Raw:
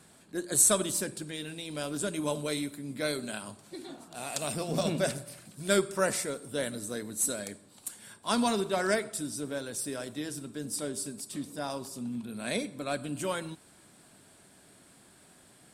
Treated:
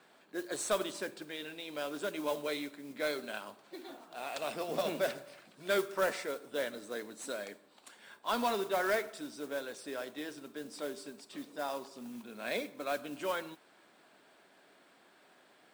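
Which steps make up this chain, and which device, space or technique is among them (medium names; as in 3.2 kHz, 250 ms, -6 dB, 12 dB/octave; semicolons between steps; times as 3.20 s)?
carbon microphone (band-pass 400–3300 Hz; saturation -21.5 dBFS, distortion -18 dB; modulation noise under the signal 17 dB)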